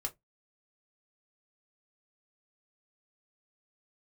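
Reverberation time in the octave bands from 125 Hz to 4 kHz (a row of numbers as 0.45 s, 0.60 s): 0.25 s, 0.20 s, 0.15 s, 0.15 s, 0.10 s, 0.10 s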